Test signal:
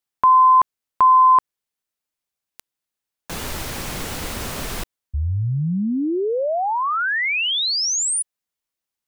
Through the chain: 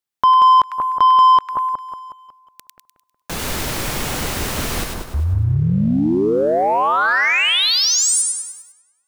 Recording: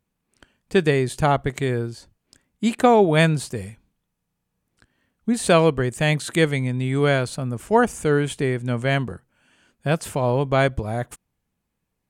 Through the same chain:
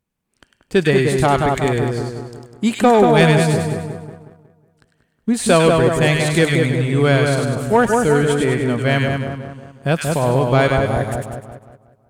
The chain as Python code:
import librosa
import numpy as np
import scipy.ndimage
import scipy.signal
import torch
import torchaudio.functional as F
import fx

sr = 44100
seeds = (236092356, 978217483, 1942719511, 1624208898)

y = fx.echo_split(x, sr, split_hz=1400.0, low_ms=183, high_ms=100, feedback_pct=52, wet_db=-3.5)
y = fx.leveller(y, sr, passes=1)